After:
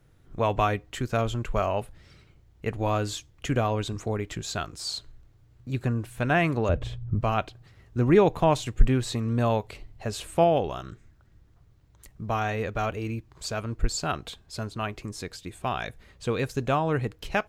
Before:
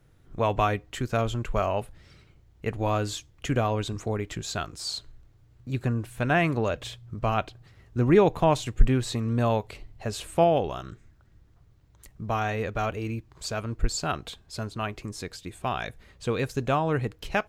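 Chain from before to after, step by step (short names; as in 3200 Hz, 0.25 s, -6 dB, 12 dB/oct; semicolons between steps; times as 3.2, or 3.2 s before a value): 6.69–7.21 tilt -3.5 dB/oct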